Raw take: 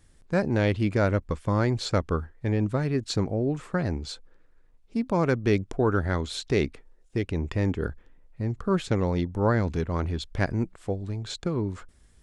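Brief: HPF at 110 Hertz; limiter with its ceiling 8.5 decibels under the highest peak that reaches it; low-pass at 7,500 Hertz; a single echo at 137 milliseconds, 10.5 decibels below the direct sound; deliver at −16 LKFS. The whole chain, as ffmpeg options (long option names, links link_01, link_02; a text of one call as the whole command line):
ffmpeg -i in.wav -af "highpass=110,lowpass=7500,alimiter=limit=-17.5dB:level=0:latency=1,aecho=1:1:137:0.299,volume=14.5dB" out.wav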